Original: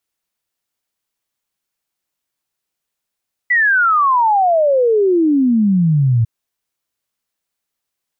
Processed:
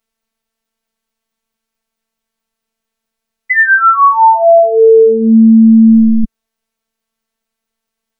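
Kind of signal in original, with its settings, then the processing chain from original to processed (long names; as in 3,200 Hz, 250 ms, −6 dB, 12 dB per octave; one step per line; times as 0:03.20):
exponential sine sweep 2,000 Hz → 110 Hz 2.75 s −10 dBFS
spectral tilt −2 dB per octave
phases set to zero 224 Hz
boost into a limiter +9 dB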